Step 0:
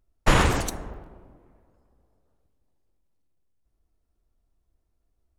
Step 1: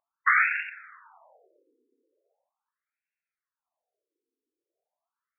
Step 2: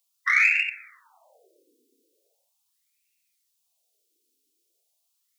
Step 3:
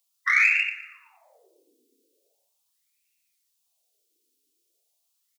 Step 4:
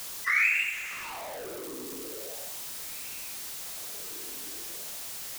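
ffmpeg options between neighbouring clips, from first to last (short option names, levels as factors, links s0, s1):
-af "aemphasis=mode=production:type=riaa,afftfilt=real='re*between(b*sr/1024,340*pow(2000/340,0.5+0.5*sin(2*PI*0.4*pts/sr))/1.41,340*pow(2000/340,0.5+0.5*sin(2*PI*0.4*pts/sr))*1.41)':imag='im*between(b*sr/1024,340*pow(2000/340,0.5+0.5*sin(2*PI*0.4*pts/sr))/1.41,340*pow(2000/340,0.5+0.5*sin(2*PI*0.4*pts/sr))*1.41)':win_size=1024:overlap=0.75,volume=1.68"
-filter_complex "[0:a]acrossover=split=540|910[s0][s1][s2];[s0]dynaudnorm=f=290:g=5:m=3.98[s3];[s2]aexciter=amount=12.7:drive=8.3:freq=2400[s4];[s3][s1][s4]amix=inputs=3:normalize=0,volume=0.447"
-af "aecho=1:1:117|234|351|468:0.168|0.0672|0.0269|0.0107"
-af "aeval=exprs='val(0)+0.5*0.0447*sgn(val(0))':c=same,volume=0.501"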